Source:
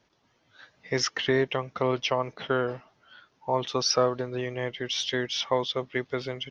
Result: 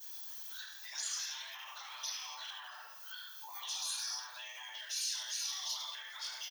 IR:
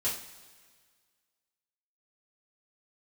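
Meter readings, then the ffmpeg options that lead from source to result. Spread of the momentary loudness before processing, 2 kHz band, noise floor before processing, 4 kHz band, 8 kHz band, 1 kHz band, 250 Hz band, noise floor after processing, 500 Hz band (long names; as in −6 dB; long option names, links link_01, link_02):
8 LU, −13.0 dB, −69 dBFS, −7.5 dB, can't be measured, −17.5 dB, below −40 dB, −51 dBFS, −39.5 dB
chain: -filter_complex "[0:a]aemphasis=mode=production:type=bsi[link_01];[1:a]atrim=start_sample=2205,afade=type=out:start_time=0.33:duration=0.01,atrim=end_sample=14994[link_02];[link_01][link_02]afir=irnorm=-1:irlink=0,afftfilt=real='re*lt(hypot(re,im),0.141)':imag='im*lt(hypot(re,im),0.141)':win_size=1024:overlap=0.75,highpass=frequency=940:width=0.5412,highpass=frequency=940:width=1.3066,equalizer=frequency=4900:width_type=o:width=1.7:gain=-11.5,aphaser=in_gain=1:out_gain=1:delay=3.8:decay=0.33:speed=1.9:type=sinusoidal,aecho=1:1:1.2:0.3,aecho=1:1:72:0.398,alimiter=level_in=8dB:limit=-24dB:level=0:latency=1:release=24,volume=-8dB,acompressor=threshold=-56dB:ratio=3,aexciter=amount=6.7:drive=4.7:freq=3400,volume=3.5dB"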